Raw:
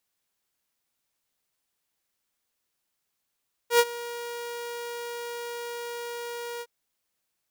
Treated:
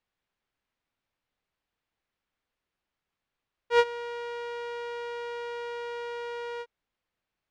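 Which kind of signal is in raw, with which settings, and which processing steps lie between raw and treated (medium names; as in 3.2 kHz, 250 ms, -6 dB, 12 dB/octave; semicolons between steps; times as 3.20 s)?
ADSR saw 475 Hz, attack 92 ms, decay 49 ms, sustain -19 dB, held 2.91 s, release 51 ms -12 dBFS
low-pass 2.9 kHz 12 dB/octave; bass shelf 82 Hz +9.5 dB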